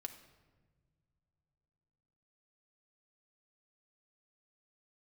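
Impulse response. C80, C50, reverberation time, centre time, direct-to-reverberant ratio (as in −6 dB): 12.5 dB, 10.5 dB, non-exponential decay, 13 ms, 4.5 dB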